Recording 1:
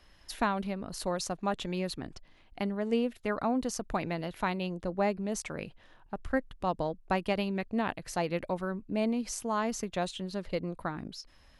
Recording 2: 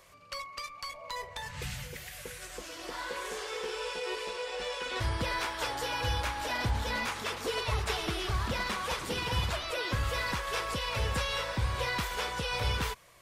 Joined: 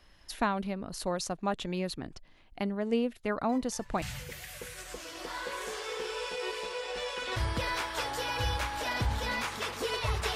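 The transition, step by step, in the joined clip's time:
recording 1
3.49 s: add recording 2 from 1.13 s 0.53 s -14 dB
4.02 s: go over to recording 2 from 1.66 s

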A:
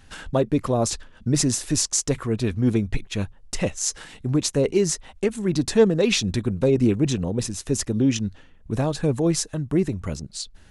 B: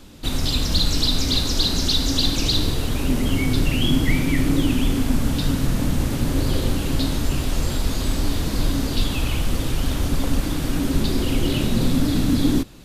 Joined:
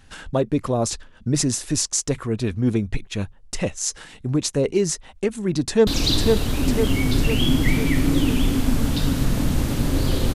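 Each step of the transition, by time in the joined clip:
A
5.59–5.87 s: echo throw 500 ms, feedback 60%, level -3 dB
5.87 s: go over to B from 2.29 s

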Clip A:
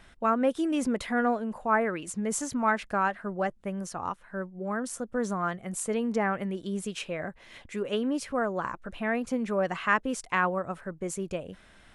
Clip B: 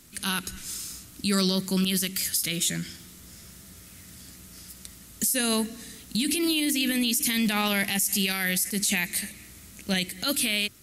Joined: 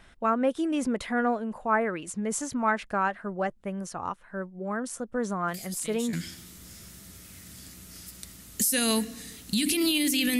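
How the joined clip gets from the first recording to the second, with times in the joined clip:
clip A
5.48 s: add clip B from 2.10 s 0.65 s -14 dB
6.13 s: go over to clip B from 2.75 s

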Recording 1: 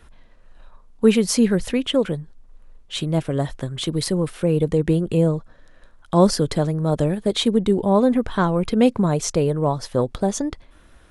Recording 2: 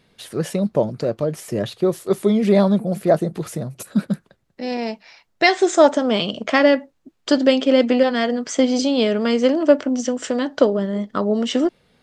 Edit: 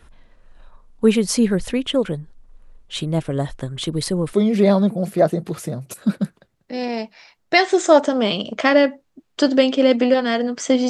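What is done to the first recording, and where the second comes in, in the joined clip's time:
recording 1
4.33 s: go over to recording 2 from 2.22 s

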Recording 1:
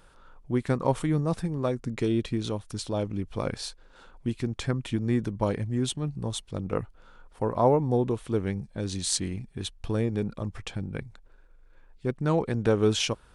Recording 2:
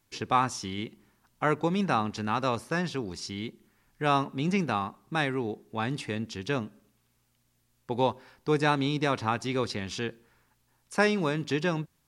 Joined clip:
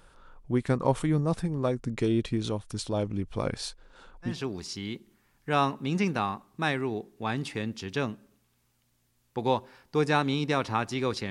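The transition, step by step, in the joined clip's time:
recording 1
4.31 s: go over to recording 2 from 2.84 s, crossfade 0.18 s

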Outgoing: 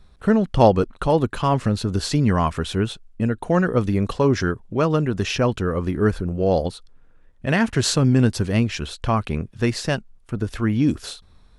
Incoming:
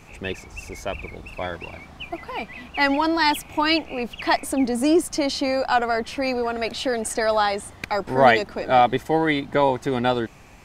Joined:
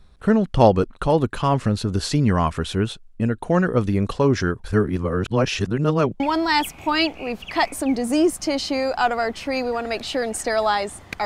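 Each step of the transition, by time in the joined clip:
outgoing
4.64–6.20 s: reverse
6.20 s: go over to incoming from 2.91 s

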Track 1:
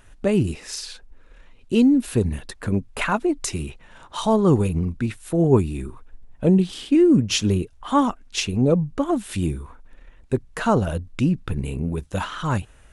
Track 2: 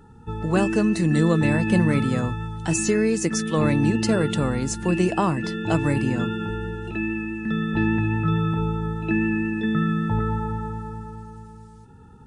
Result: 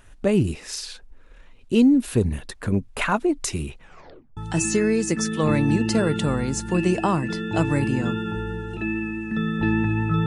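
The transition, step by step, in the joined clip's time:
track 1
3.83 s: tape stop 0.54 s
4.37 s: go over to track 2 from 2.51 s

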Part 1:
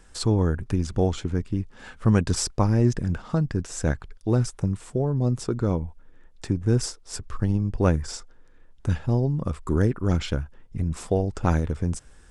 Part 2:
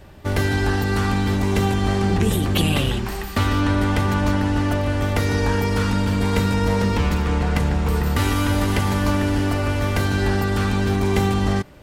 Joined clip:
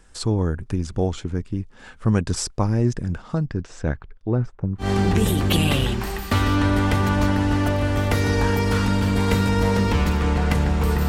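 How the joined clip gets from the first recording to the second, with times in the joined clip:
part 1
3.46–4.90 s: low-pass 5.6 kHz -> 1 kHz
4.84 s: go over to part 2 from 1.89 s, crossfade 0.12 s

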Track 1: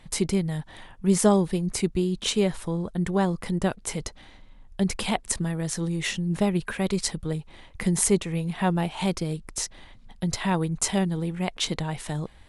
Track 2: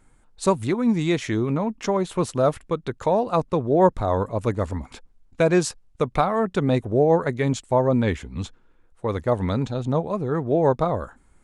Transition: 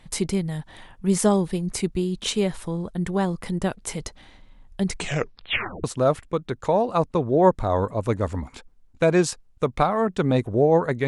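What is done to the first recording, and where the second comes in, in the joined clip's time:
track 1
4.87 s: tape stop 0.97 s
5.84 s: go over to track 2 from 2.22 s

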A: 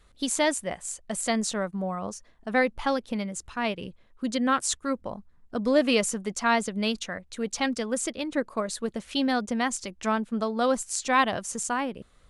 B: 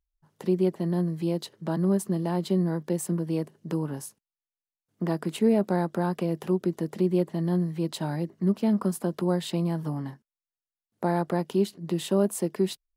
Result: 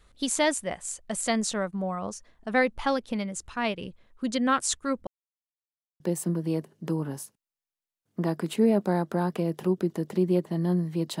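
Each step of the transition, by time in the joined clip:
A
5.07–6.00 s: mute
6.00 s: go over to B from 2.83 s

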